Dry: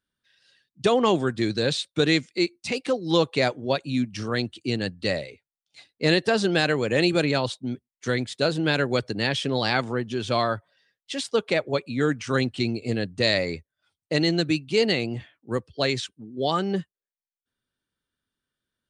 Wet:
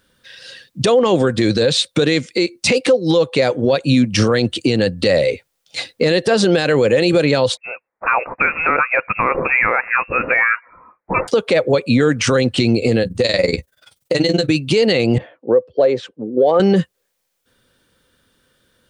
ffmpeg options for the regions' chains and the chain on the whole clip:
-filter_complex "[0:a]asettb=1/sr,asplit=3[a][b][c];[a]atrim=end=7.574[d];[b]atrim=start=7.57:end=11.28,asetpts=PTS-STARTPTS,afade=t=in:d=0.004:c=qsin,afade=t=out:st=3.706:d=0.004:c=qsin,highpass=1k,lowpass=f=2.5k:t=q:w=0.5098,lowpass=f=2.5k:t=q:w=0.6013,lowpass=f=2.5k:t=q:w=0.9,lowpass=f=2.5k:t=q:w=2.563,afreqshift=-2900[e];[c]atrim=start=11.276[f];[d][e]acrossfade=d=0.004:c1=hsin:c2=qsin[g];[g][f]acrossfade=d=0.004:c1=qsin:c2=hsin,asettb=1/sr,asplit=3[h][i][j];[h]atrim=end=13.024[k];[i]atrim=start=13.02:end=14.49,asetpts=PTS-STARTPTS,afade=t=in:d=0.004:c=qsin,afade=t=out:st=1.466:d=0.004:c=qsin,highshelf=f=5.4k:g=8,tremolo=f=21:d=0.947,asplit=2[l][m];[m]adelay=16,volume=-12.5dB[n];[l][n]amix=inputs=2:normalize=0,atrim=end_sample=64827[o];[j]atrim=start=14.486[p];[k][o]acrossfade=d=0.004:c1=hsin:c2=qsin[q];[q][p]acrossfade=d=0.004:c1=qsin:c2=hsin,asettb=1/sr,asplit=3[r][s][t];[r]atrim=end=15.184[u];[s]atrim=start=15.18:end=16.6,asetpts=PTS-STARTPTS,afade=t=in:d=0.004:c=qsin,afade=t=out:st=1.416:d=0.004:c=qsin,asoftclip=type=hard:threshold=-14dB,bandpass=f=540:t=q:w=1.6[v];[t]atrim=start=16.596[w];[u][v]acrossfade=d=0.004:c1=hsin:c2=qsin[x];[x][w]acrossfade=d=0.004:c1=qsin:c2=hsin,equalizer=f=510:t=o:w=0.22:g=11.5,acompressor=threshold=-32dB:ratio=4,alimiter=level_in=28.5dB:limit=-1dB:release=50:level=0:latency=1,volume=-4.5dB"

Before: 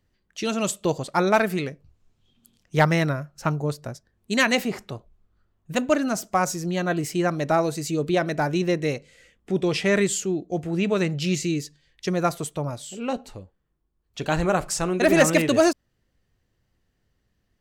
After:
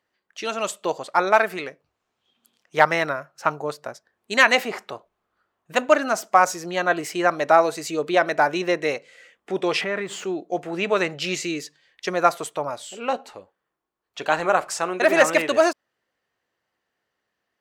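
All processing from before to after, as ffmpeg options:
-filter_complex "[0:a]asettb=1/sr,asplit=3[a][b][c];[a]atrim=end=9.814[d];[b]atrim=start=9.81:end=10.24,asetpts=PTS-STARTPTS,afade=t=in:d=0.004:c=qsin,afade=t=out:st=0.426:d=0.004:c=qsin,aeval=exprs='val(0)+0.5*0.02*sgn(val(0))':c=same,bass=f=250:g=7,treble=f=4k:g=-13,acompressor=threshold=-24dB:ratio=4:attack=3.2:release=140:knee=1:detection=peak[e];[c]atrim=start=10.236[f];[d][e]acrossfade=d=0.004:c1=hsin:c2=qsin[g];[g][f]acrossfade=d=0.004:c1=qsin:c2=hsin,dynaudnorm=f=230:g=31:m=4dB,highpass=f=700:p=1,equalizer=f=920:w=0.31:g=11.5,volume=-5.5dB"

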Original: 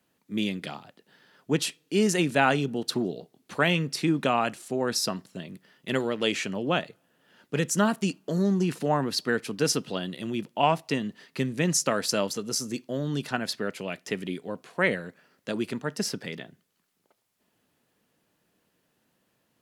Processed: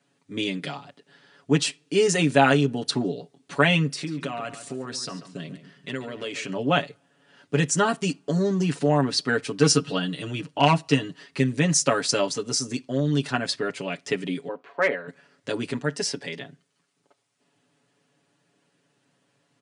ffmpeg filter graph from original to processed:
-filter_complex "[0:a]asettb=1/sr,asplit=3[a][b][c];[a]atrim=end=3.914[d];[b]atrim=start=3.91:end=6.49,asetpts=PTS-STARTPTS,afade=t=in:d=0.004:c=qsin,afade=t=out:st=2.576:d=0.004:c=qsin,bandreject=f=830:w=11,acompressor=threshold=-32dB:ratio=5:attack=3.2:release=140:knee=1:detection=peak,asplit=2[e][f];[f]adelay=139,lowpass=f=4k:p=1,volume=-12dB,asplit=2[g][h];[h]adelay=139,lowpass=f=4k:p=1,volume=0.3,asplit=2[i][j];[j]adelay=139,lowpass=f=4k:p=1,volume=0.3[k];[e][g][i][k]amix=inputs=4:normalize=0,atrim=end_sample=113778[l];[c]atrim=start=6.486[m];[d][l]acrossfade=d=0.004:c1=hsin:c2=qsin[n];[n][m]acrossfade=d=0.004:c1=qsin:c2=hsin,asettb=1/sr,asplit=3[o][p][q];[o]atrim=end=9.594[r];[p]atrim=start=9.59:end=11.23,asetpts=PTS-STARTPTS,afade=t=in:d=0.004:c=qsin,afade=t=out:st=1.636:d=0.004:c=qsin,aecho=1:1:6.4:0.64,atrim=end_sample=72324,volume=13.5dB,asoftclip=hard,volume=-13.5dB[s];[q]atrim=start=11.226[t];[r][s]acrossfade=d=0.004:c1=hsin:c2=qsin[u];[u][t]acrossfade=d=0.004:c1=qsin:c2=hsin,asettb=1/sr,asplit=3[v][w][x];[v]atrim=end=14.484[y];[w]atrim=start=14.48:end=15.08,asetpts=PTS-STARTPTS,afade=t=in:d=0.004:c=qsin,afade=t=out:st=0.596:d=0.004:c=qsin,highpass=380,lowpass=2.1k,asoftclip=type=hard:threshold=-15.5dB[z];[x]atrim=start=15.076[aa];[y][z]acrossfade=d=0.004:c1=hsin:c2=qsin[ab];[ab][aa]acrossfade=d=0.004:c1=qsin:c2=hsin,asettb=1/sr,asplit=3[ac][ad][ae];[ac]atrim=end=15.984[af];[ad]atrim=start=15.98:end=16.41,asetpts=PTS-STARTPTS,afade=t=in:d=0.004:c=qsin,afade=t=out:st=0.426:d=0.004:c=qsin,highpass=f=300:p=1,bandreject=f=1.3k:w=5.1[ag];[ae]atrim=start=16.406[ah];[af][ag]acrossfade=d=0.004:c1=hsin:c2=qsin[ai];[ai][ah]acrossfade=d=0.004:c1=qsin:c2=hsin,aecho=1:1:7.1:0.86,afftfilt=real='re*between(b*sr/4096,100,10000)':imag='im*between(b*sr/4096,100,10000)':win_size=4096:overlap=0.75,volume=1.5dB"

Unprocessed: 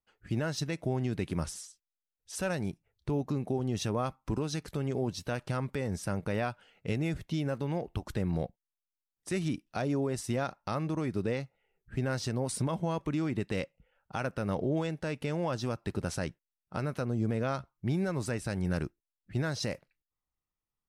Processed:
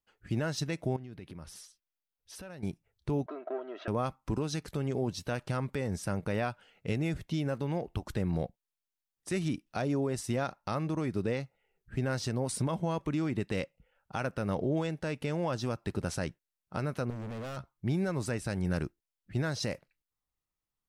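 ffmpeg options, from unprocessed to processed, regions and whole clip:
-filter_complex "[0:a]asettb=1/sr,asplit=3[a][b][c];[a]atrim=end=0.964[d];[b]atrim=start=0.96:end=2.63,asetpts=PTS-STARTPTS,afade=t=in:d=0.004:c=qsin,afade=t=out:st=1.666:d=0.004:c=qsin,equalizer=f=7.5k:w=1.9:g=-10.5,acompressor=threshold=-44dB:ratio=4:attack=3.2:release=140:knee=1:detection=peak[e];[c]atrim=start=2.626[f];[d][e]acrossfade=d=0.004:c1=hsin:c2=qsin[g];[g][f]acrossfade=d=0.004:c1=qsin:c2=hsin,asettb=1/sr,asplit=3[h][i][j];[h]atrim=end=3.264[k];[i]atrim=start=3.26:end=3.88,asetpts=PTS-STARTPTS,afade=t=in:d=0.004:c=qsin,afade=t=out:st=0.616:d=0.004:c=qsin,aeval=exprs='if(lt(val(0),0),0.447*val(0),val(0))':c=same,highpass=f=400:w=0.5412,highpass=f=400:w=1.3066,equalizer=f=640:t=q:w=4:g=9,equalizer=f=950:t=q:w=4:g=-4,equalizer=f=1.4k:t=q:w=4:g=9,equalizer=f=2.5k:t=q:w=4:g=-5,lowpass=f=2.8k:w=0.5412,lowpass=f=2.8k:w=1.3066,aecho=1:1:3.1:0.59,atrim=end_sample=27342[l];[j]atrim=start=3.876[m];[k][l]acrossfade=d=0.004:c1=hsin:c2=qsin[n];[n][m]acrossfade=d=0.004:c1=qsin:c2=hsin,asettb=1/sr,asplit=3[o][p][q];[o]atrim=end=17.104[r];[p]atrim=start=17.1:end=17.57,asetpts=PTS-STARTPTS,afade=t=in:d=0.004:c=qsin,afade=t=out:st=0.466:d=0.004:c=qsin,equalizer=f=1k:t=o:w=0.71:g=-5.5,asoftclip=type=hard:threshold=-37dB[s];[q]atrim=start=17.566[t];[r][s]acrossfade=d=0.004:c1=hsin:c2=qsin[u];[u][t]acrossfade=d=0.004:c1=qsin:c2=hsin"

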